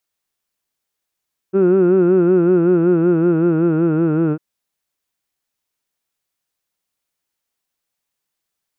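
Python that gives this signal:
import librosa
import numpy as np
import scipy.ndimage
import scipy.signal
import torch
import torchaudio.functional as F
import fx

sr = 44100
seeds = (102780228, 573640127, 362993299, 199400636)

y = fx.formant_vowel(sr, seeds[0], length_s=2.85, hz=187.0, glide_st=-3.0, vibrato_hz=5.3, vibrato_st=0.9, f1_hz=370.0, f2_hz=1400.0, f3_hz=2600.0)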